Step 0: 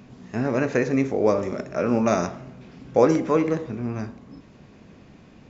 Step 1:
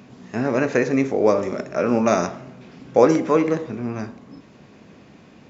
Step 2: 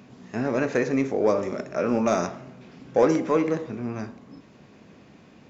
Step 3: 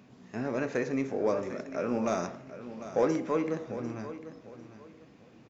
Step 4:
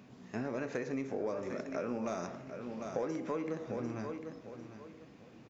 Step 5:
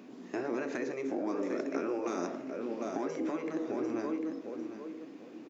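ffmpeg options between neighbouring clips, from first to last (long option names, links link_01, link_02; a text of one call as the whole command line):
ffmpeg -i in.wav -af "highpass=frequency=170:poles=1,volume=3.5dB" out.wav
ffmpeg -i in.wav -af "acontrast=25,volume=-8.5dB" out.wav
ffmpeg -i in.wav -af "aecho=1:1:748|1496|2244:0.224|0.0604|0.0163,volume=-7dB" out.wav
ffmpeg -i in.wav -af "acompressor=threshold=-33dB:ratio=6" out.wav
ffmpeg -i in.wav -af "afftfilt=real='re*lt(hypot(re,im),0.0891)':imag='im*lt(hypot(re,im),0.0891)':win_size=1024:overlap=0.75,highpass=frequency=300:width_type=q:width=3.4,volume=2.5dB" out.wav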